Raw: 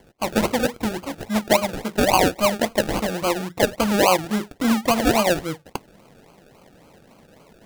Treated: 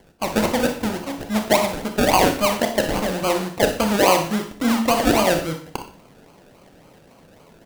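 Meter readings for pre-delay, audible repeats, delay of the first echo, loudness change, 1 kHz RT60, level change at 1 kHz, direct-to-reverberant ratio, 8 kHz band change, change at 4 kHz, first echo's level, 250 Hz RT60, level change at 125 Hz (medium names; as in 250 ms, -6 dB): 25 ms, 1, 61 ms, +1.0 dB, 0.45 s, +1.5 dB, 5.5 dB, +1.5 dB, +1.5 dB, -12.0 dB, 0.50 s, +1.0 dB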